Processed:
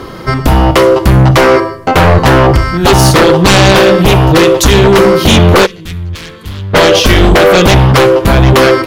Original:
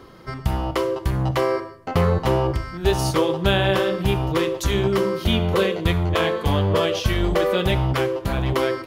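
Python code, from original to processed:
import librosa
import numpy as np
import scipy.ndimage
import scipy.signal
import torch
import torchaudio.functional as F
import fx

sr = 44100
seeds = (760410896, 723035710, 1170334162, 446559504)

y = fx.fold_sine(x, sr, drive_db=14, ceiling_db=-3.5)
y = fx.tone_stack(y, sr, knobs='6-0-2', at=(5.65, 6.73), fade=0.02)
y = y * 10.0 ** (2.0 / 20.0)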